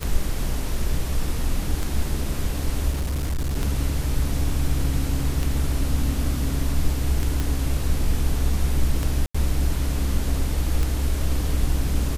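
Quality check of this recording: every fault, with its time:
tick 33 1/3 rpm
2.9–3.57 clipped -21 dBFS
7.4 pop
9.26–9.35 gap 85 ms

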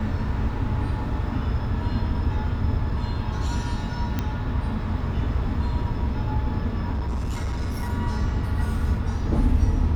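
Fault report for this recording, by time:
4.19 pop -12 dBFS
6.92–7.9 clipped -23 dBFS

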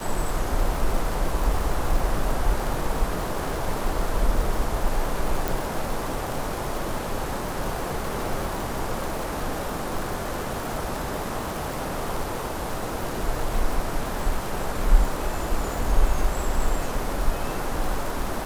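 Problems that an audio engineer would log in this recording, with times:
crackle 180/s -29 dBFS
5.48 pop

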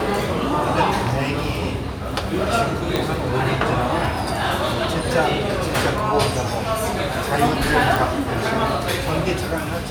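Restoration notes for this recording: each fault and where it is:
2.96 pop -6 dBFS
7.96 pop

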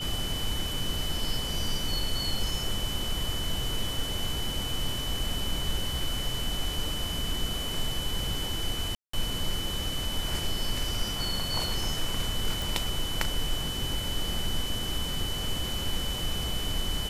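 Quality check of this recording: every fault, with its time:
tone 3000 Hz -34 dBFS
8.95–9.13 gap 0.184 s
12.62 pop

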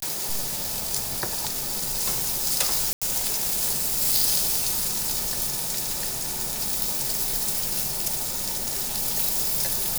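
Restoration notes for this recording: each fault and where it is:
2.93–3.02 gap 86 ms

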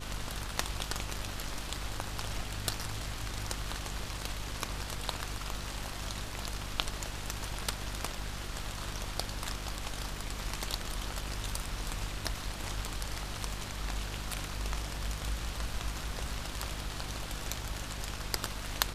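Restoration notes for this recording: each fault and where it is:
hum 50 Hz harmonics 7 -42 dBFS

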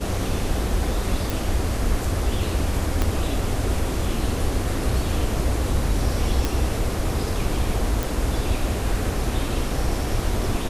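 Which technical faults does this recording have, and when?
1.3 pop
3.02 pop -8 dBFS
6.45 pop
8.03 pop

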